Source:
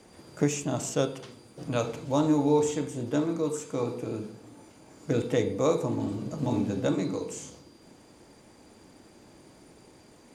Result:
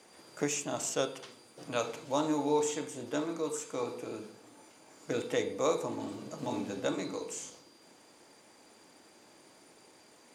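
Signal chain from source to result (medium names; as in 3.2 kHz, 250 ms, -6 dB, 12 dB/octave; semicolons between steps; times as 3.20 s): high-pass 690 Hz 6 dB/octave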